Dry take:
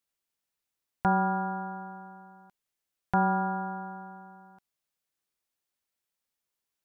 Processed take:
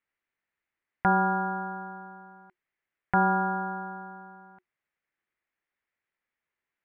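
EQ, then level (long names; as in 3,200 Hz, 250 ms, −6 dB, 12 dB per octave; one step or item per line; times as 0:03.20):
low-pass with resonance 2,000 Hz, resonance Q 3.1
parametric band 360 Hz +9 dB 0.22 octaves
notch filter 360 Hz, Q 12
0.0 dB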